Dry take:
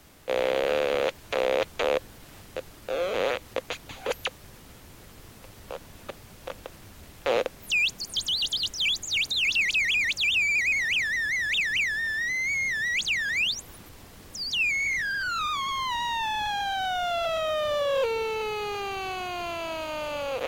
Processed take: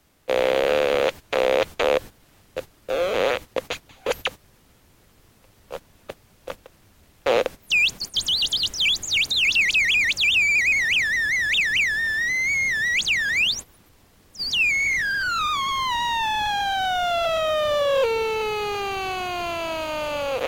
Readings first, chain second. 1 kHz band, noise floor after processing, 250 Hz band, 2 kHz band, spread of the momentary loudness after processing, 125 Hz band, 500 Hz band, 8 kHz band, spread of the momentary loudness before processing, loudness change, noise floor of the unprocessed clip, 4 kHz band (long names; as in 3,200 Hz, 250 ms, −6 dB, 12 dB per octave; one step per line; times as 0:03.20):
+5.0 dB, −57 dBFS, +4.5 dB, +5.0 dB, 12 LU, +4.0 dB, +5.0 dB, +4.5 dB, 15 LU, +5.0 dB, −49 dBFS, +5.0 dB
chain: noise gate −36 dBFS, range −13 dB
level +5 dB